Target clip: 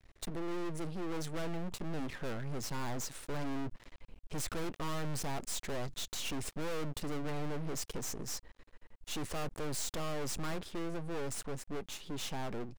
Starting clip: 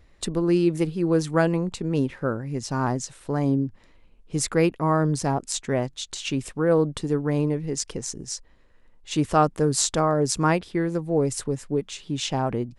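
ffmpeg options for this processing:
-af "dynaudnorm=f=200:g=21:m=3.76,aeval=exprs='max(val(0),0)':c=same,aeval=exprs='(tanh(22.4*val(0)+0.75)-tanh(0.75))/22.4':c=same,volume=1.68"

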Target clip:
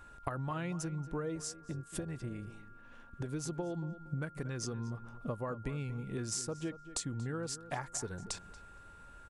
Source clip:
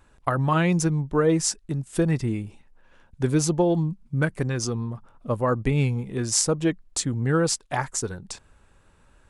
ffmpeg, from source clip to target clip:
-filter_complex "[0:a]acompressor=threshold=0.0178:ratio=12,aeval=exprs='val(0)+0.002*sin(2*PI*1400*n/s)':c=same,asplit=2[s0][s1];[s1]adelay=233,lowpass=f=2700:p=1,volume=0.2,asplit=2[s2][s3];[s3]adelay=233,lowpass=f=2700:p=1,volume=0.28,asplit=2[s4][s5];[s5]adelay=233,lowpass=f=2700:p=1,volume=0.28[s6];[s2][s4][s6]amix=inputs=3:normalize=0[s7];[s0][s7]amix=inputs=2:normalize=0,asettb=1/sr,asplit=3[s8][s9][s10];[s8]atrim=end=1.354[s11];[s9]atrim=start=1.35:end=3.29,asetpts=PTS-STARTPTS,afade=t=in:d=0.004:c=qsin,afade=t=out:st=1.936:d=0.004:c=qsin,tremolo=f=240:d=0.519[s12];[s10]atrim=start=3.286[s13];[s11][s12]acrossfade=d=0.004:c1=hsin:c2=qsin[s14];[s14][s13]acrossfade=d=0.004:c1=qsin:c2=hsin"

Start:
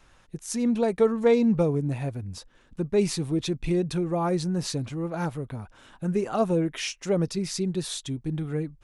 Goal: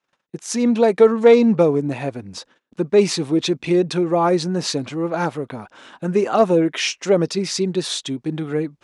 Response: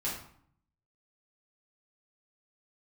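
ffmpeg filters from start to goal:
-af "acontrast=71,agate=range=0.0355:threshold=0.00501:ratio=16:detection=peak,highpass=250,lowpass=6700,volume=1.5"

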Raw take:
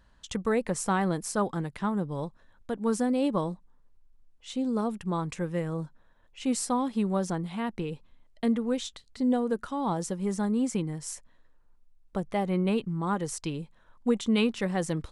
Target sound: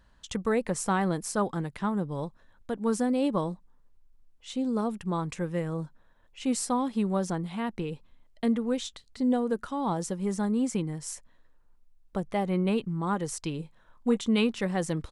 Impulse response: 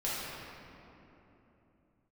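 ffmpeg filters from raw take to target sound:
-filter_complex "[0:a]asplit=3[s0][s1][s2];[s0]afade=t=out:st=13.58:d=0.02[s3];[s1]asplit=2[s4][s5];[s5]adelay=26,volume=0.316[s6];[s4][s6]amix=inputs=2:normalize=0,afade=t=in:st=13.58:d=0.02,afade=t=out:st=14.15:d=0.02[s7];[s2]afade=t=in:st=14.15:d=0.02[s8];[s3][s7][s8]amix=inputs=3:normalize=0"

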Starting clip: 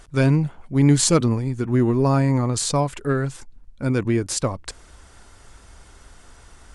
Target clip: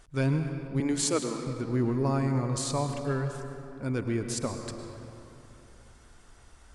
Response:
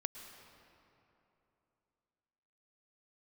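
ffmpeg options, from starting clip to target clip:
-filter_complex "[0:a]asettb=1/sr,asplit=3[s0][s1][s2];[s0]atrim=end=0.804[s3];[s1]atrim=start=0.8:end=1.47,asetpts=PTS-STARTPTS,afade=t=in:d=0.004:c=qsin,afade=t=out:st=0.666:d=0.004:c=qsin,highpass=f=280:w=0.5412,highpass=f=280:w=1.3066[s4];[s2]atrim=start=1.466[s5];[s3][s4]acrossfade=d=0.004:c1=hsin:c2=qsin[s6];[s6][s5]acrossfade=d=0.004:c1=qsin:c2=hsin[s7];[1:a]atrim=start_sample=2205[s8];[s7][s8]afir=irnorm=-1:irlink=0,volume=0.447"

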